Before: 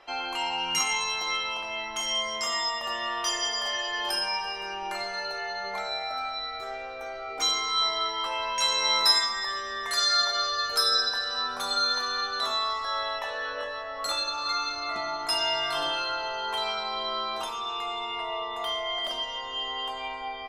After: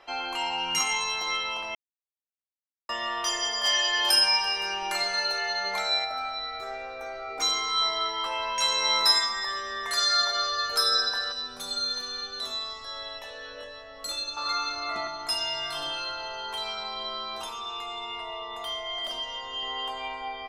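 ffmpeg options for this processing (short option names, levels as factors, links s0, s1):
-filter_complex "[0:a]asplit=3[s0][s1][s2];[s0]afade=t=out:st=3.63:d=0.02[s3];[s1]highshelf=f=2100:g=10.5,afade=t=in:st=3.63:d=0.02,afade=t=out:st=6.04:d=0.02[s4];[s2]afade=t=in:st=6.04:d=0.02[s5];[s3][s4][s5]amix=inputs=3:normalize=0,asettb=1/sr,asplit=3[s6][s7][s8];[s6]atrim=end=6.614[s9];[s7]atrim=start=6.61:end=7.52,asetpts=PTS-STARTPTS,afade=t=in:d=0.004:c=qsin,afade=t=out:st=0.906:d=0.004:c=qsin,bandreject=f=3100:w=12[s10];[s8]atrim=start=7.516[s11];[s9][s10]acrossfade=d=0.004:c1=hsin:c2=qsin[s12];[s12][s11]acrossfade=d=0.004:c1=qsin:c2=hsin,asettb=1/sr,asplit=3[s13][s14][s15];[s13]atrim=end=11.324[s16];[s14]atrim=start=11.32:end=14.37,asetpts=PTS-STARTPTS,afade=t=in:d=0.004:c=qsin,afade=t=out:st=3.046:d=0.004:c=qsin,equalizer=f=1100:t=o:w=2:g=-13.5[s17];[s15]atrim=start=14.366[s18];[s16][s17]acrossfade=d=0.004:c1=hsin:c2=qsin[s19];[s19][s18]acrossfade=d=0.004:c1=qsin:c2=hsin,asettb=1/sr,asplit=3[s20][s21][s22];[s20]atrim=end=15.074[s23];[s21]atrim=start=15.07:end=19.63,asetpts=PTS-STARTPTS,afade=t=in:d=0.004:c=qsin,afade=t=out:st=4.556:d=0.004:c=qsin,acrossover=split=190|3000[s24][s25][s26];[s25]acompressor=threshold=0.0158:ratio=2.5:attack=3.2:release=140:knee=2.83:detection=peak[s27];[s24][s27][s26]amix=inputs=3:normalize=0[s28];[s22]atrim=start=19.626[s29];[s23][s28]acrossfade=d=0.004:c1=hsin:c2=qsin[s30];[s30][s29]acrossfade=d=0.004:c1=qsin:c2=hsin,asplit=3[s31][s32][s33];[s31]atrim=end=1.75,asetpts=PTS-STARTPTS,afade=t=out:st=1.746:d=0.004:c=hsin[s34];[s32]atrim=start=1.75:end=2.89,asetpts=PTS-STARTPTS,volume=0[s35];[s33]atrim=start=2.89,asetpts=PTS-STARTPTS,afade=t=in:d=0.004:c=hsin[s36];[s34][s35][s36]concat=n=3:v=0:a=1"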